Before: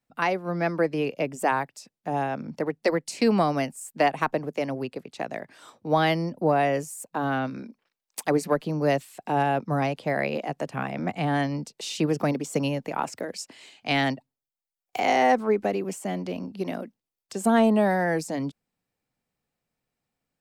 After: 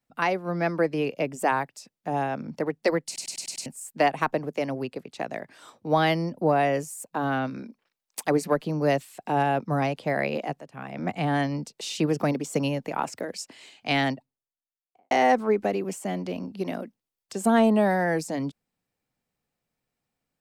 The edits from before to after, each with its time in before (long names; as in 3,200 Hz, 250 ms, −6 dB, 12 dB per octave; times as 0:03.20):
0:03.06: stutter in place 0.10 s, 6 plays
0:10.60–0:11.08: fade in quadratic, from −13 dB
0:13.92–0:15.11: fade out and dull